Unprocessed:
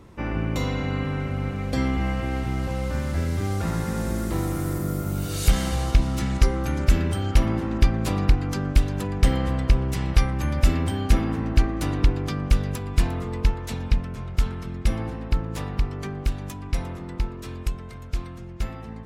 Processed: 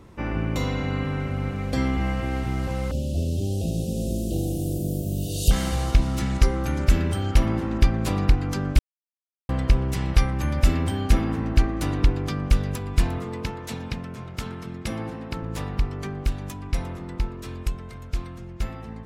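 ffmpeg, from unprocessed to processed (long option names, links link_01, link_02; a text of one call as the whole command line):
ffmpeg -i in.wav -filter_complex "[0:a]asettb=1/sr,asplit=3[link_01][link_02][link_03];[link_01]atrim=end=2.914[link_04];[link_02]atrim=start=2.91:end=5.51,asetpts=PTS-STARTPTS,afade=type=in:duration=0.004:curve=qsin,afade=type=out:start_time=2.596:duration=0.004:curve=qsin,asuperstop=centerf=1400:order=20:qfactor=0.72[link_05];[link_03]atrim=start=5.506[link_06];[link_04][link_05]acrossfade=duration=0.004:curve1=hsin:curve2=qsin[link_07];[link_07][link_06]acrossfade=duration=0.004:curve1=qsin:curve2=hsin,asettb=1/sr,asplit=3[link_08][link_09][link_10];[link_08]atrim=end=13.184[link_11];[link_09]atrim=start=13.18:end=15.43,asetpts=PTS-STARTPTS,afade=type=in:duration=0.004:curve=qsin,afade=type=out:start_time=2.246:duration=0.004:curve=qsin,highpass=120[link_12];[link_10]atrim=start=15.426[link_13];[link_11][link_12]acrossfade=duration=0.004:curve1=hsin:curve2=qsin[link_14];[link_14][link_13]acrossfade=duration=0.004:curve1=qsin:curve2=hsin,asplit=3[link_15][link_16][link_17];[link_15]atrim=end=8.79,asetpts=PTS-STARTPTS,afade=type=out:start_time=8.786:duration=0.004:curve=hsin[link_18];[link_16]atrim=start=8.79:end=9.49,asetpts=PTS-STARTPTS,volume=0[link_19];[link_17]atrim=start=9.49,asetpts=PTS-STARTPTS,afade=type=in:duration=0.004:curve=hsin[link_20];[link_18][link_19][link_20]concat=n=3:v=0:a=1" out.wav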